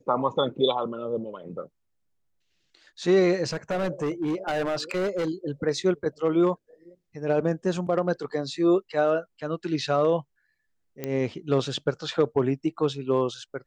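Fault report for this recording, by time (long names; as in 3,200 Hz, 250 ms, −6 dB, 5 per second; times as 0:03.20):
0:03.46–0:05.29: clipping −23 dBFS
0:11.04: click −16 dBFS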